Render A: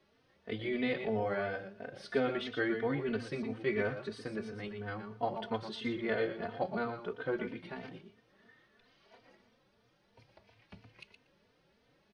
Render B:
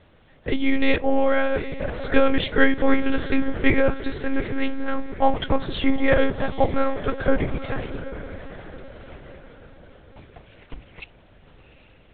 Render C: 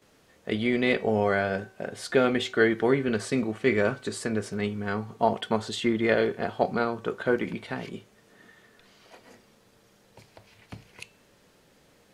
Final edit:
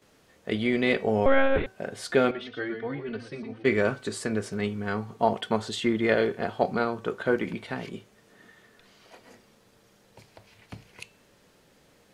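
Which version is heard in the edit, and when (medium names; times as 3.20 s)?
C
1.26–1.66 s: from B
2.31–3.65 s: from A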